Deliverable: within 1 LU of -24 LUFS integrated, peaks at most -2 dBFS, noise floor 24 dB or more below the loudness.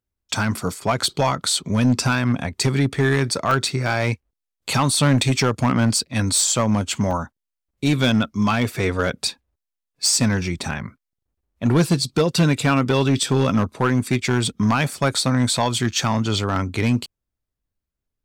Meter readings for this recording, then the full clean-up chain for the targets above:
clipped 1.2%; flat tops at -11.0 dBFS; dropouts 2; longest dropout 2.0 ms; loudness -20.5 LUFS; peak -11.0 dBFS; loudness target -24.0 LUFS
-> clip repair -11 dBFS; interpolate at 3.51/7.11, 2 ms; gain -3.5 dB

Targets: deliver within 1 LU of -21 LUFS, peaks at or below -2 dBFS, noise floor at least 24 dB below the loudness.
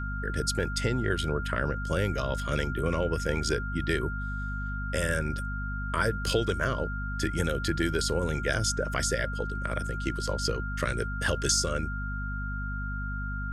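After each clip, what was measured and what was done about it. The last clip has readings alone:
hum 50 Hz; harmonics up to 250 Hz; hum level -31 dBFS; steady tone 1400 Hz; tone level -36 dBFS; loudness -30.0 LUFS; peak -12.5 dBFS; loudness target -21.0 LUFS
-> notches 50/100/150/200/250 Hz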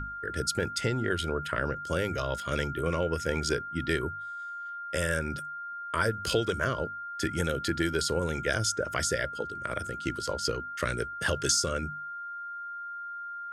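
hum none; steady tone 1400 Hz; tone level -36 dBFS
-> notch 1400 Hz, Q 30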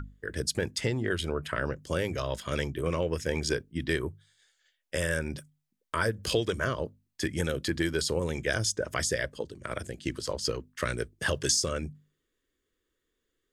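steady tone none; loudness -31.0 LUFS; peak -12.5 dBFS; loudness target -21.0 LUFS
-> gain +10 dB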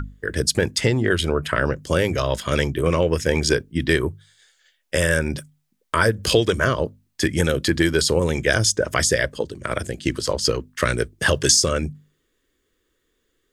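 loudness -21.0 LUFS; peak -2.5 dBFS; noise floor -71 dBFS

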